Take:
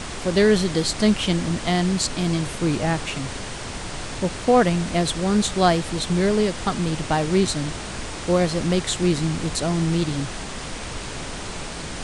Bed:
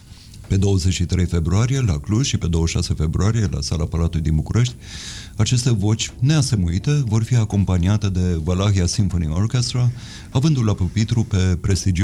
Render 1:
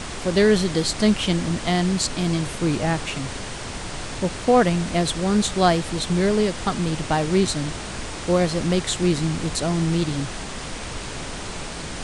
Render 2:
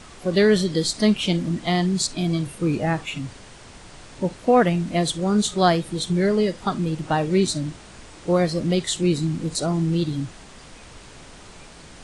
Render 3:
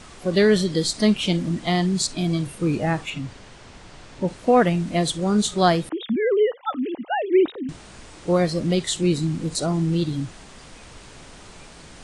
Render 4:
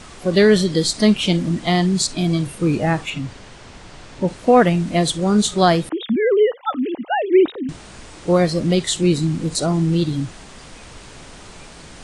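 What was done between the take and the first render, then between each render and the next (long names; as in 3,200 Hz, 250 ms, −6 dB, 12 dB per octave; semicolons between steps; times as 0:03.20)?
no processing that can be heard
noise reduction from a noise print 12 dB
0:03.10–0:04.28: high-frequency loss of the air 54 metres; 0:05.89–0:07.69: three sine waves on the formant tracks
level +4 dB; brickwall limiter −3 dBFS, peak gain reduction 1.5 dB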